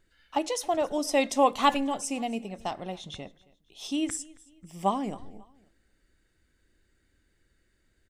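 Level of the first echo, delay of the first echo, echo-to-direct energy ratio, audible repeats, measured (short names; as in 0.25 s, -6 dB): -23.0 dB, 0.271 s, -22.5 dB, 2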